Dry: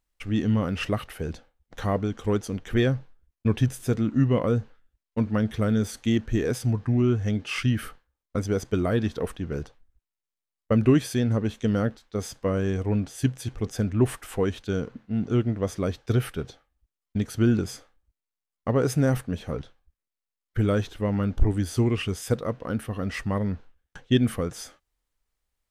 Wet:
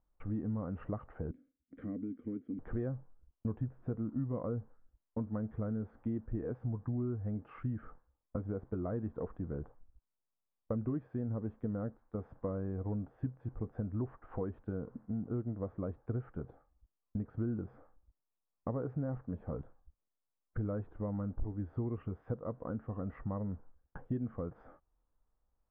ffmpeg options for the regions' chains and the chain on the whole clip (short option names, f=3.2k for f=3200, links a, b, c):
-filter_complex "[0:a]asettb=1/sr,asplit=3[a][b][c];[a]atrim=end=1.314[d];[b]atrim=start=1.31:end=2.59,asetpts=PTS-STARTPTS,afade=t=in:d=0.004:c=qsin,afade=t=out:st=1.276:d=0.004:c=qsin,acontrast=67,asplit=3[e][f][g];[e]bandpass=f=270:t=q:w=8,volume=0dB[h];[f]bandpass=f=2.29k:t=q:w=8,volume=-6dB[i];[g]bandpass=f=3.01k:t=q:w=8,volume=-9dB[j];[h][i][j]amix=inputs=3:normalize=0[k];[c]atrim=start=2.586[l];[d][k]acrossfade=d=0.004:c1=hsin:c2=qsin[m];[m][l]acrossfade=d=0.004:c1=qsin:c2=hsin,acompressor=threshold=-41dB:ratio=3,lowpass=f=1.2k:w=0.5412,lowpass=f=1.2k:w=1.3066,bandreject=f=400:w=12,volume=2dB"